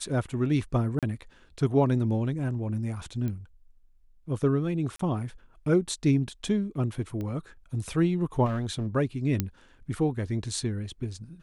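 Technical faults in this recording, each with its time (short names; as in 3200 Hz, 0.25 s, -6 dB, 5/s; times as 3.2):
0.99–1.03 gap 37 ms
3.28 pop -22 dBFS
4.96–4.99 gap 34 ms
7.21 pop -24 dBFS
8.45–8.87 clipped -25.5 dBFS
9.4 pop -11 dBFS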